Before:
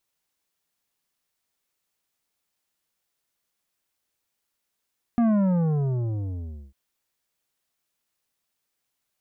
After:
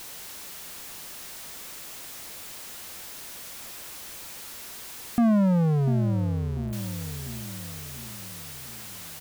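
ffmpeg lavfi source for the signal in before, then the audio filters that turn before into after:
-f lavfi -i "aevalsrc='0.119*clip((1.55-t)/1.48,0,1)*tanh(3.16*sin(2*PI*240*1.55/log(65/240)*(exp(log(65/240)*t/1.55)-1)))/tanh(3.16)':d=1.55:s=44100"
-filter_complex "[0:a]aeval=exprs='val(0)+0.5*0.0188*sgn(val(0))':c=same,asplit=2[s0][s1];[s1]adelay=695,lowpass=f=840:p=1,volume=0.355,asplit=2[s2][s3];[s3]adelay=695,lowpass=f=840:p=1,volume=0.5,asplit=2[s4][s5];[s5]adelay=695,lowpass=f=840:p=1,volume=0.5,asplit=2[s6][s7];[s7]adelay=695,lowpass=f=840:p=1,volume=0.5,asplit=2[s8][s9];[s9]adelay=695,lowpass=f=840:p=1,volume=0.5,asplit=2[s10][s11];[s11]adelay=695,lowpass=f=840:p=1,volume=0.5[s12];[s0][s2][s4][s6][s8][s10][s12]amix=inputs=7:normalize=0"

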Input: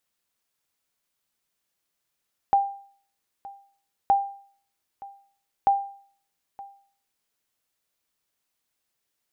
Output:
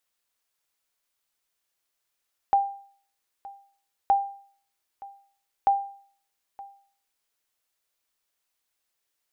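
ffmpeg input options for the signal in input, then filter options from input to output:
-f lavfi -i "aevalsrc='0.237*(sin(2*PI*795*mod(t,1.57))*exp(-6.91*mod(t,1.57)/0.51)+0.0891*sin(2*PI*795*max(mod(t,1.57)-0.92,0))*exp(-6.91*max(mod(t,1.57)-0.92,0)/0.51))':d=4.71:s=44100"
-af "equalizer=f=160:w=0.68:g=-9"

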